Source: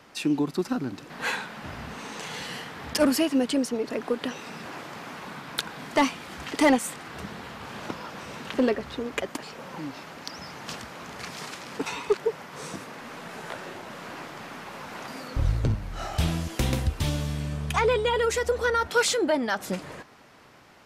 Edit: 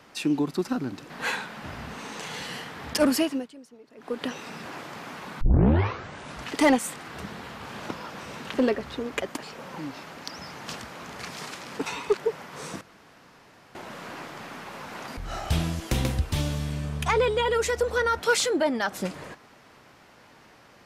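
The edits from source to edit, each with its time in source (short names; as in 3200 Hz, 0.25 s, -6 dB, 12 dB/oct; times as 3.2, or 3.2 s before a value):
3.21–4.24 dip -22 dB, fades 0.28 s
5.41 tape start 1.13 s
12.81–13.75 room tone
15.17–15.85 cut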